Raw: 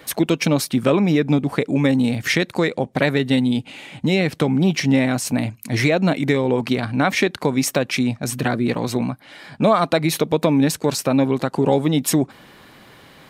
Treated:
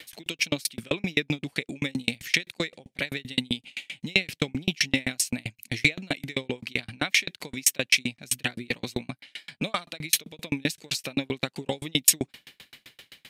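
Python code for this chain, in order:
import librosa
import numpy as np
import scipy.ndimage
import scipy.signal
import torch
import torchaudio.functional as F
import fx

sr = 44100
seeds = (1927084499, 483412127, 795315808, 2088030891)

y = fx.high_shelf_res(x, sr, hz=1700.0, db=12.5, q=1.5)
y = fx.tremolo_decay(y, sr, direction='decaying', hz=7.7, depth_db=39)
y = y * 10.0 ** (-4.5 / 20.0)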